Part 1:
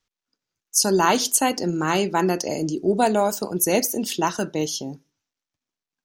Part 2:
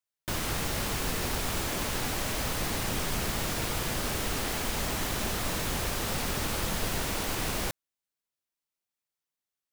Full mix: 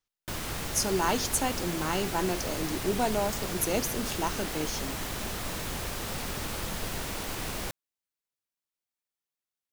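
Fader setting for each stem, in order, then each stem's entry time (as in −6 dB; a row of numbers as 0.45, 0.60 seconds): −9.0, −3.5 decibels; 0.00, 0.00 seconds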